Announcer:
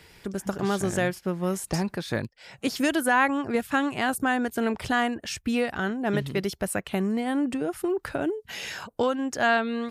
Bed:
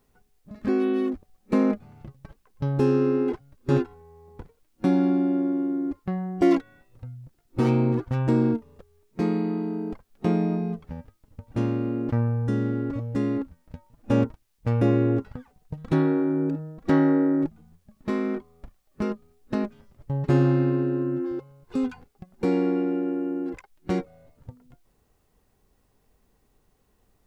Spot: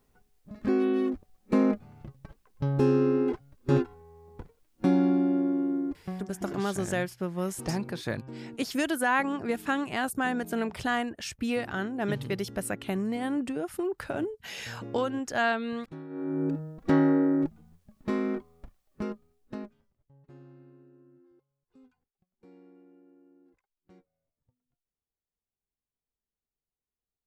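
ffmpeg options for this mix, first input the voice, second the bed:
-filter_complex "[0:a]adelay=5950,volume=0.631[s0];[1:a]volume=6.68,afade=t=out:st=5.76:d=0.67:silence=0.112202,afade=t=in:st=16.09:d=0.4:silence=0.11885,afade=t=out:st=18.43:d=1.65:silence=0.0334965[s1];[s0][s1]amix=inputs=2:normalize=0"

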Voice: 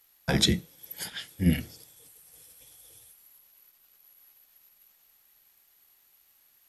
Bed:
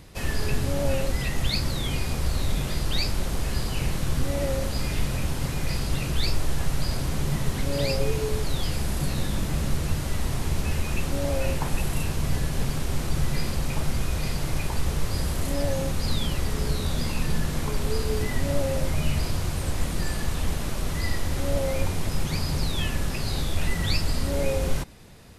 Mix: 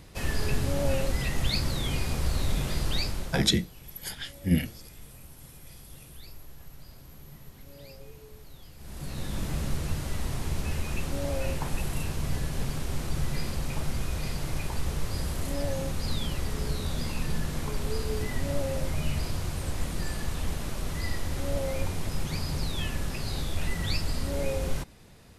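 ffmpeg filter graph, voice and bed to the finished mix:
-filter_complex "[0:a]adelay=3050,volume=0.944[s0];[1:a]volume=6.31,afade=t=out:st=2.88:d=0.68:silence=0.0944061,afade=t=in:st=8.77:d=0.68:silence=0.125893[s1];[s0][s1]amix=inputs=2:normalize=0"

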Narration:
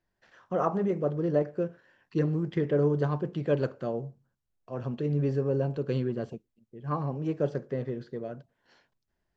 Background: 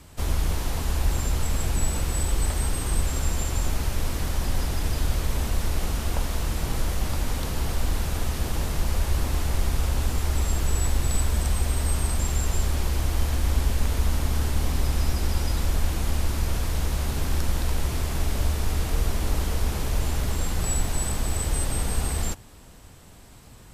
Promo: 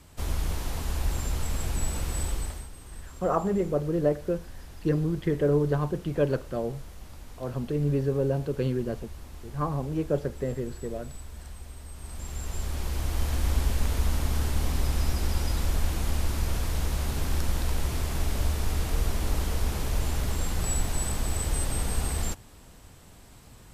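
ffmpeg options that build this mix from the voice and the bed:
-filter_complex "[0:a]adelay=2700,volume=1.19[s0];[1:a]volume=3.76,afade=t=out:st=2.25:d=0.43:silence=0.199526,afade=t=in:st=11.95:d=1.47:silence=0.158489[s1];[s0][s1]amix=inputs=2:normalize=0"

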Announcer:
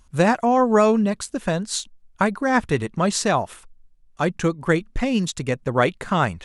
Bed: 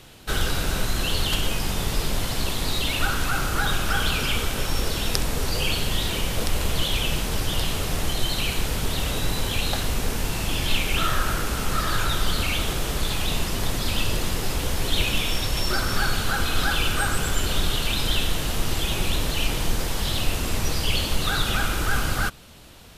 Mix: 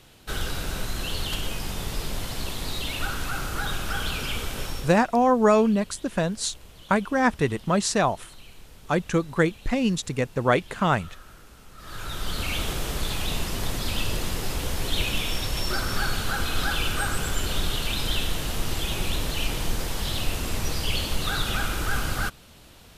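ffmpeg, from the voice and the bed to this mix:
-filter_complex "[0:a]adelay=4700,volume=0.794[s0];[1:a]volume=5.62,afade=t=out:st=4.64:d=0.39:silence=0.125893,afade=t=in:st=11.77:d=0.81:silence=0.0944061[s1];[s0][s1]amix=inputs=2:normalize=0"

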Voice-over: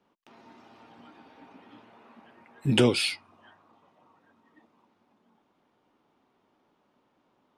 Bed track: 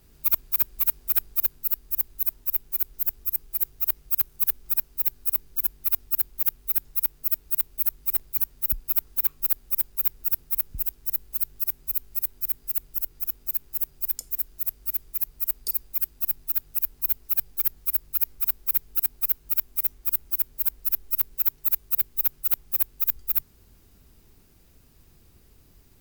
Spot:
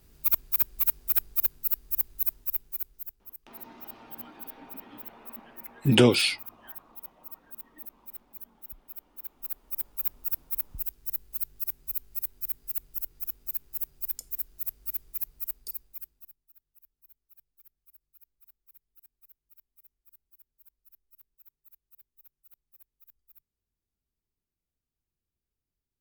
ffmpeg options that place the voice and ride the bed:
-filter_complex "[0:a]adelay=3200,volume=1.41[s0];[1:a]volume=3.98,afade=t=out:st=2.25:d=0.92:silence=0.133352,afade=t=in:st=9.18:d=0.93:silence=0.199526,afade=t=out:st=15.18:d=1.17:silence=0.0398107[s1];[s0][s1]amix=inputs=2:normalize=0"

